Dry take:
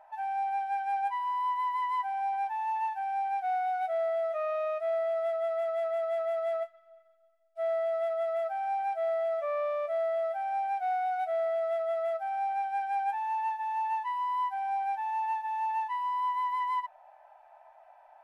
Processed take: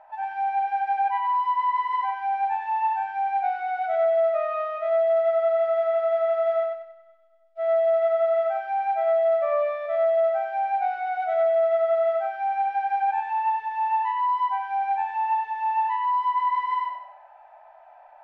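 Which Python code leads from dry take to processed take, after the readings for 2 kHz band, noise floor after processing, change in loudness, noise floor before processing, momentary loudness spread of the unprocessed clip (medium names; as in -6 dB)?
+6.5 dB, -51 dBFS, +7.0 dB, -58 dBFS, 2 LU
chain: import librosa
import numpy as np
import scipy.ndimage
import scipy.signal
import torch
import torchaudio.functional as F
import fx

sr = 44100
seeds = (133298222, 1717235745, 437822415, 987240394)

y = scipy.signal.sosfilt(scipy.signal.butter(2, 3600.0, 'lowpass', fs=sr, output='sos'), x)
y = fx.echo_feedback(y, sr, ms=94, feedback_pct=39, wet_db=-3)
y = F.gain(torch.from_numpy(y), 4.5).numpy()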